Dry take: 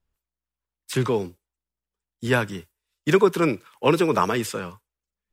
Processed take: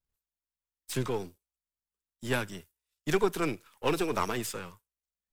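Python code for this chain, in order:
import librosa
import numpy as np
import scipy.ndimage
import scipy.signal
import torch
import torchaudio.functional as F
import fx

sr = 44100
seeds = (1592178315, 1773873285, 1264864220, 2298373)

y = np.where(x < 0.0, 10.0 ** (-7.0 / 20.0) * x, x)
y = fx.high_shelf(y, sr, hz=4700.0, db=8.0)
y = F.gain(torch.from_numpy(y), -7.0).numpy()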